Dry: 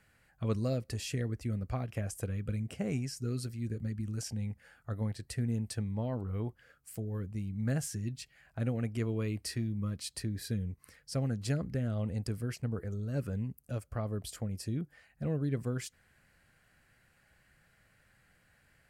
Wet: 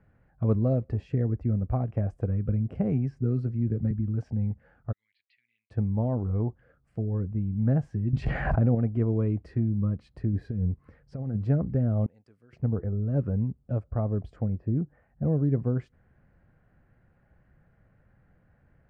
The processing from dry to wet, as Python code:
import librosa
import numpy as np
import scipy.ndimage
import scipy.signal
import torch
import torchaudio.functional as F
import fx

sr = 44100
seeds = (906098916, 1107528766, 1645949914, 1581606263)

y = fx.band_squash(x, sr, depth_pct=70, at=(2.75, 3.91))
y = fx.ellip_bandpass(y, sr, low_hz=2200.0, high_hz=4500.0, order=3, stop_db=60, at=(4.91, 5.7), fade=0.02)
y = fx.env_flatten(y, sr, amount_pct=100, at=(8.13, 8.75))
y = fx.over_compress(y, sr, threshold_db=-35.0, ratio=-0.5, at=(10.33, 11.45))
y = fx.differentiator(y, sr, at=(12.06, 12.53))
y = fx.lowpass(y, sr, hz=1900.0, slope=12, at=(14.57, 15.31), fade=0.02)
y = fx.dynamic_eq(y, sr, hz=780.0, q=2.1, threshold_db=-54.0, ratio=4.0, max_db=4)
y = scipy.signal.sosfilt(scipy.signal.butter(2, 1100.0, 'lowpass', fs=sr, output='sos'), y)
y = fx.low_shelf(y, sr, hz=480.0, db=7.0)
y = y * 10.0 ** (2.0 / 20.0)